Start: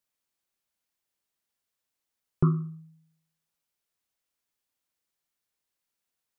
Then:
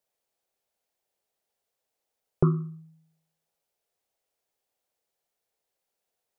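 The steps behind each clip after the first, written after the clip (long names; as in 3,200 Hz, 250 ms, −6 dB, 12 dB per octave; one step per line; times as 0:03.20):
flat-topped bell 570 Hz +10 dB 1.3 octaves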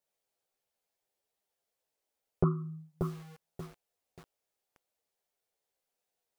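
multi-voice chorus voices 2, 0.79 Hz, delay 14 ms, depth 4.2 ms
feedback echo at a low word length 584 ms, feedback 35%, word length 8 bits, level −5.5 dB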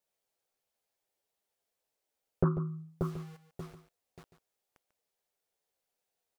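single-tap delay 144 ms −12 dB
highs frequency-modulated by the lows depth 0.2 ms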